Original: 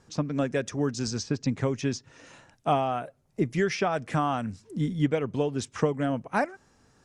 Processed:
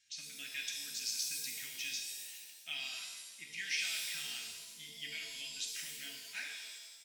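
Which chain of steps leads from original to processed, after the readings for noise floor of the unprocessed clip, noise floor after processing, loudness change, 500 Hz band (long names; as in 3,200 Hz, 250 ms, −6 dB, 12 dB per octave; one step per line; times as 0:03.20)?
−65 dBFS, −55 dBFS, −11.0 dB, −37.0 dB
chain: inverse Chebyshev high-pass filter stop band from 1,200 Hz, stop band 40 dB
high-shelf EQ 4,500 Hz −11.5 dB
notch filter 4,900 Hz, Q 28
comb filter 3.2 ms, depth 34%
reverb with rising layers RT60 1.2 s, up +7 semitones, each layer −2 dB, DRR 1 dB
level +3 dB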